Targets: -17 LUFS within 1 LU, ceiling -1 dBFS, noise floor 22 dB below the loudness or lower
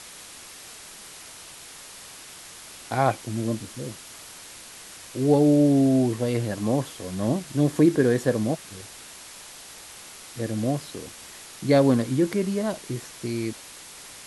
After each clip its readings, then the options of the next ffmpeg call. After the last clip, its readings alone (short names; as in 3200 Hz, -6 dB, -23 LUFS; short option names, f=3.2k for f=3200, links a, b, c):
noise floor -44 dBFS; noise floor target -46 dBFS; loudness -24.0 LUFS; peak -6.5 dBFS; loudness target -17.0 LUFS
-> -af "afftdn=nr=6:nf=-44"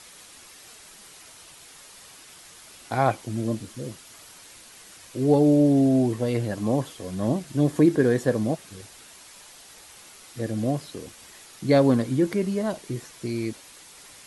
noise floor -48 dBFS; loudness -24.0 LUFS; peak -6.5 dBFS; loudness target -17.0 LUFS
-> -af "volume=7dB,alimiter=limit=-1dB:level=0:latency=1"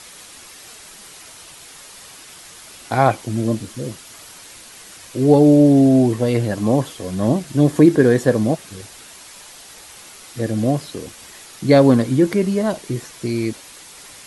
loudness -17.0 LUFS; peak -1.0 dBFS; noise floor -41 dBFS